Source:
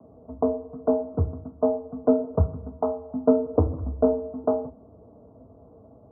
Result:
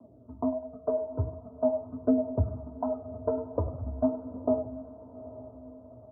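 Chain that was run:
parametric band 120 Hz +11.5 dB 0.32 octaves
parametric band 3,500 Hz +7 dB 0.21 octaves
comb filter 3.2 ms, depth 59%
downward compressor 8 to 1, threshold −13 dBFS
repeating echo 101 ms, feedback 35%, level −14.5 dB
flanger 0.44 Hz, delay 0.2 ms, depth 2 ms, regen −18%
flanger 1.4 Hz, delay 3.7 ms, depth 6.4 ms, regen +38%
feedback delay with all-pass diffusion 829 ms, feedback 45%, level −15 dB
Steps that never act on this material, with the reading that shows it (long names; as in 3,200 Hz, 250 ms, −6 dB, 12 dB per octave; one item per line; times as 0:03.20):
parametric band 3,500 Hz: nothing at its input above 1,100 Hz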